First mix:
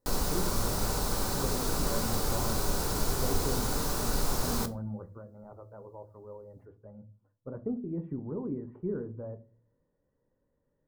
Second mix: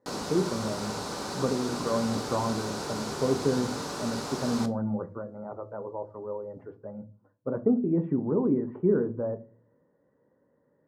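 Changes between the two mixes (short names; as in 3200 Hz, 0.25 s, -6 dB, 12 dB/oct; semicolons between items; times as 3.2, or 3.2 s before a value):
speech +11.0 dB; master: add BPF 170–6200 Hz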